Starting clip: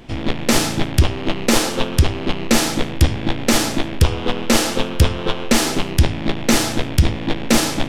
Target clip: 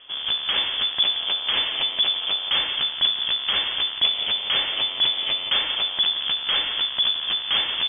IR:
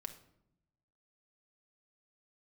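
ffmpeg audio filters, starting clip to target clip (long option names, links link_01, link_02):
-filter_complex "[0:a]bandreject=frequency=1000:width=13,aresample=11025,aeval=exprs='clip(val(0),-1,0.141)':channel_layout=same,aresample=44100,asplit=2[link_01][link_02];[link_02]adelay=174.9,volume=-9dB,highshelf=frequency=4000:gain=-3.94[link_03];[link_01][link_03]amix=inputs=2:normalize=0,lowpass=frequency=3000:width_type=q:width=0.5098,lowpass=frequency=3000:width_type=q:width=0.6013,lowpass=frequency=3000:width_type=q:width=0.9,lowpass=frequency=3000:width_type=q:width=2.563,afreqshift=-3500,volume=-5.5dB"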